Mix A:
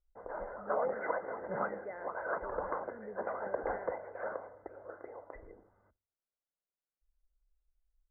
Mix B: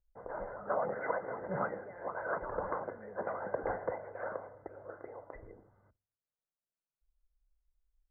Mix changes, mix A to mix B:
speech -7.5 dB; master: add peaking EQ 130 Hz +11 dB 0.87 oct

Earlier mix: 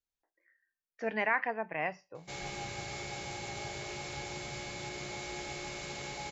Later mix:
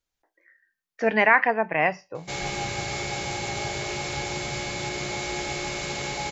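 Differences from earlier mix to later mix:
speech +12.0 dB; background +10.5 dB

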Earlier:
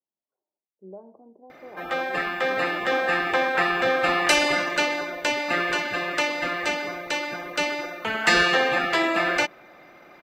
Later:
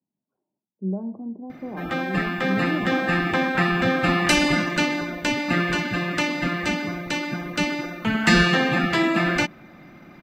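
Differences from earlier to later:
speech +7.0 dB; master: add resonant low shelf 320 Hz +13 dB, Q 1.5

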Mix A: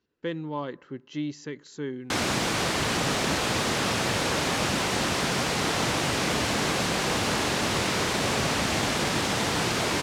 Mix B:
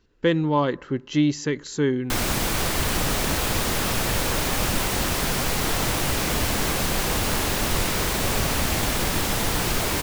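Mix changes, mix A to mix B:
speech +11.0 dB; master: remove band-pass 120–7000 Hz

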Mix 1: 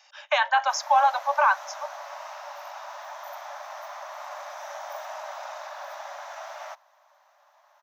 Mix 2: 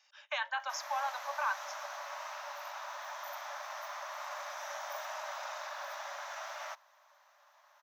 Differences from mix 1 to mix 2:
speech -10.5 dB; master: add peaking EQ 720 Hz -8 dB 0.8 oct

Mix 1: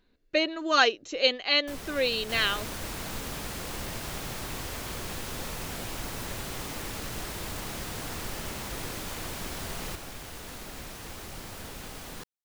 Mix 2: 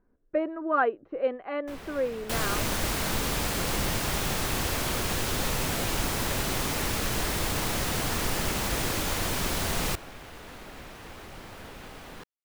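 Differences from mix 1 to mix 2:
speech: add low-pass 1.4 kHz 24 dB/octave; first sound: add tone controls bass -3 dB, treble -10 dB; second sound +9.0 dB

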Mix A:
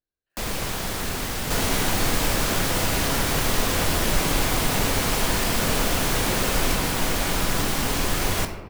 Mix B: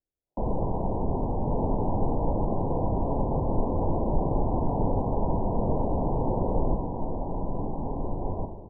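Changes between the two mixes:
first sound +3.5 dB; second sound -4.5 dB; master: add steep low-pass 980 Hz 96 dB/octave

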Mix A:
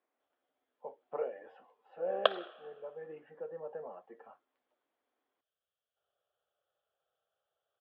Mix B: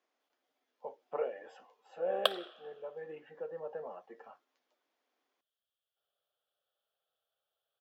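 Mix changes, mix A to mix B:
background -6.0 dB; master: remove distance through air 450 m

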